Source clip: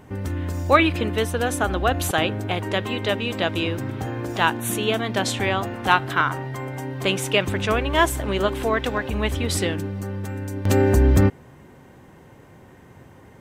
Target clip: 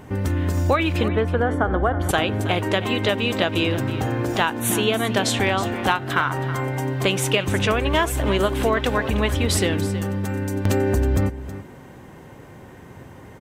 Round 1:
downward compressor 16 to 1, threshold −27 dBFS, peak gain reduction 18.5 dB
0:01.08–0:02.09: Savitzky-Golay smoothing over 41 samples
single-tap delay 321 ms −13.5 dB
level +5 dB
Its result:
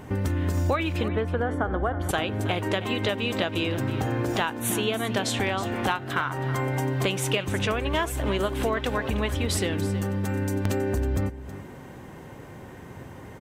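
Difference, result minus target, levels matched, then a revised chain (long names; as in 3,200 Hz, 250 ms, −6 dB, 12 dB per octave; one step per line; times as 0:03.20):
downward compressor: peak gain reduction +6 dB
downward compressor 16 to 1, threshold −20.5 dBFS, peak gain reduction 12.5 dB
0:01.08–0:02.09: Savitzky-Golay smoothing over 41 samples
single-tap delay 321 ms −13.5 dB
level +5 dB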